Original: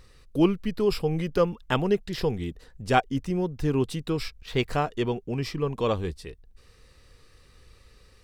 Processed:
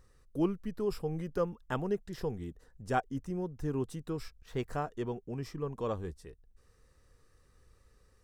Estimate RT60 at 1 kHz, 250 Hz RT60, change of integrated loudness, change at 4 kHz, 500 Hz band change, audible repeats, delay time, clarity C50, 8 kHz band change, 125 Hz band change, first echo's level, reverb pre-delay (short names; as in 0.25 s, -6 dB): none, none, -9.0 dB, -16.5 dB, -9.0 dB, none, none, none, -9.5 dB, -9.0 dB, none, none